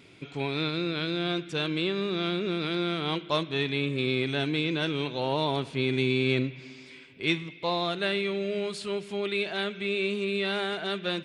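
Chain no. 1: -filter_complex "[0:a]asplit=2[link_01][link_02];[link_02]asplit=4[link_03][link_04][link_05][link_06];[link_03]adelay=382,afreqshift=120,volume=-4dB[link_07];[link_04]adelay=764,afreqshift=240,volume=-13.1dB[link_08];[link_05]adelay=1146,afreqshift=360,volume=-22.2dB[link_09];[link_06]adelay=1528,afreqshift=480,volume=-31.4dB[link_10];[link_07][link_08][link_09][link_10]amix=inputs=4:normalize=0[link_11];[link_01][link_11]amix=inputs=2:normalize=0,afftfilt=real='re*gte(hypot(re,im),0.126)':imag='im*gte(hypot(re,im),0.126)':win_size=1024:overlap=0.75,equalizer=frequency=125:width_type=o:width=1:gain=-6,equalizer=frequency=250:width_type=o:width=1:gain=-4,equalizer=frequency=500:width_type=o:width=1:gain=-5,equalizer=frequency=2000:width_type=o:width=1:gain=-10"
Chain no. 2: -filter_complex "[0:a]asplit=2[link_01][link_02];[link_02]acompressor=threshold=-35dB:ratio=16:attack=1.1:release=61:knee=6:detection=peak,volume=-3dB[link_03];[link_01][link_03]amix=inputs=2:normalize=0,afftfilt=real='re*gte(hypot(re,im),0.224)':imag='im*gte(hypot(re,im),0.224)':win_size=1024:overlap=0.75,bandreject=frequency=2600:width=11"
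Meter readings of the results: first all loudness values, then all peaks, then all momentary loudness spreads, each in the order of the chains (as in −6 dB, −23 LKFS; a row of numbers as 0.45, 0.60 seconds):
−35.5, −32.0 LKFS; −19.5, −16.0 dBFS; 5, 6 LU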